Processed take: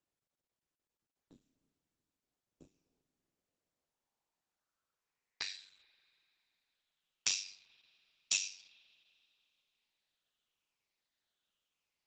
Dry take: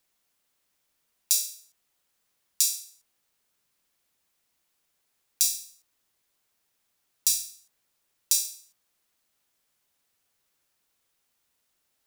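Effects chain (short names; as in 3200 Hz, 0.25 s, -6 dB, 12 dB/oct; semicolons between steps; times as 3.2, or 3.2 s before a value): moving spectral ripple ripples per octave 0.8, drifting -0.89 Hz, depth 12 dB; gate -55 dBFS, range -16 dB; ring modulator 48 Hz; soft clip -8 dBFS, distortion -18 dB; low-pass sweep 270 Hz -> 3400 Hz, 2.5–6.01; spring tank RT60 2.8 s, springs 48 ms, chirp 35 ms, DRR 18 dB; gain +3.5 dB; Opus 12 kbps 48000 Hz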